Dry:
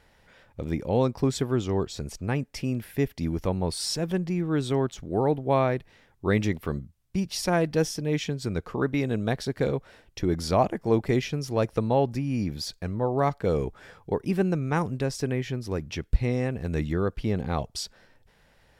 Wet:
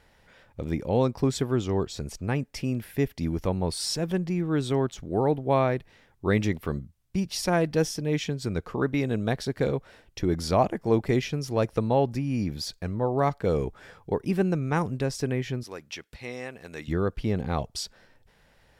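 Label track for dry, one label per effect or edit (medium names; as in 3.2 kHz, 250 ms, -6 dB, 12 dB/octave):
15.630000	16.880000	high-pass 1.1 kHz 6 dB/octave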